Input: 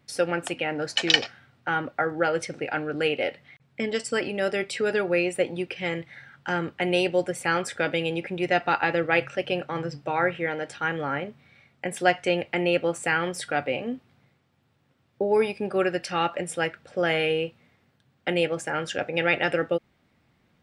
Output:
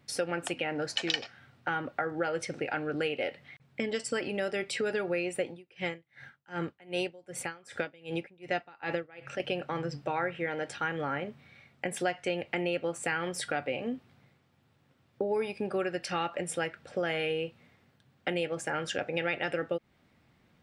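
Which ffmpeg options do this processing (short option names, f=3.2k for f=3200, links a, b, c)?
-filter_complex "[0:a]asettb=1/sr,asplit=3[a][b][c];[a]atrim=end=5.484[d];[b]atrim=start=5.48:end=9.4,asetpts=PTS-STARTPTS,afade=t=in:d=0.004:c=qsin,afade=t=out:st=3.916:d=0.004:c=qsin,aeval=exprs='val(0)*pow(10,-30*(0.5-0.5*cos(2*PI*2.6*n/s))/20)':c=same[e];[c]atrim=start=9.396[f];[d][e]acrossfade=d=0.004:c1=hsin:c2=qsin[g];[g][f]acrossfade=d=0.004:c1=qsin:c2=hsin,acompressor=threshold=-30dB:ratio=3"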